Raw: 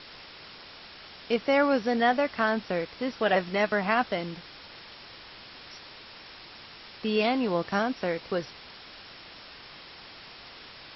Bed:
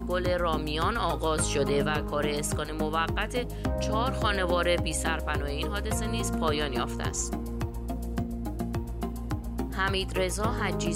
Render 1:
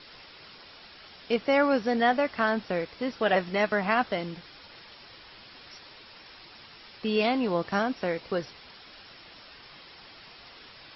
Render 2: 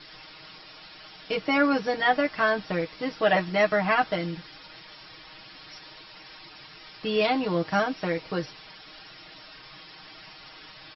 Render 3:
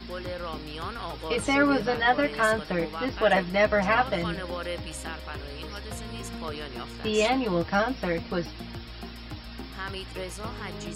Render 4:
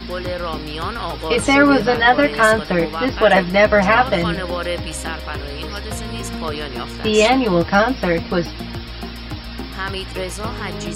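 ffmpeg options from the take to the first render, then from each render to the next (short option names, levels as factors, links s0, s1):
-af "afftdn=nr=6:nf=-48"
-af "bandreject=f=470:w=12,aecho=1:1:6.4:0.92"
-filter_complex "[1:a]volume=0.398[s0];[0:a][s0]amix=inputs=2:normalize=0"
-af "volume=3.16,alimiter=limit=0.794:level=0:latency=1"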